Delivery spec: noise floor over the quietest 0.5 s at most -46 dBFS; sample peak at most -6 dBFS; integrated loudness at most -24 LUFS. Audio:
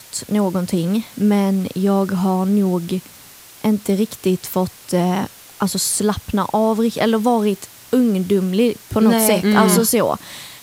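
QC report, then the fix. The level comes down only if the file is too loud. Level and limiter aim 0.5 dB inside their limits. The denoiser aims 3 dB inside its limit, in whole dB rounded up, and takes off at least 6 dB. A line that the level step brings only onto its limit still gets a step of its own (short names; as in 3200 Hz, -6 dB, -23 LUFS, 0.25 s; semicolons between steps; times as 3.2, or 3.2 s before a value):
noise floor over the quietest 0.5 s -42 dBFS: fail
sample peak -2.0 dBFS: fail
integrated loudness -18.0 LUFS: fail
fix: gain -6.5 dB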